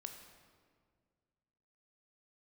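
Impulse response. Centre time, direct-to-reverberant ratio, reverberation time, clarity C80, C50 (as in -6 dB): 34 ms, 4.5 dB, 1.9 s, 7.5 dB, 6.5 dB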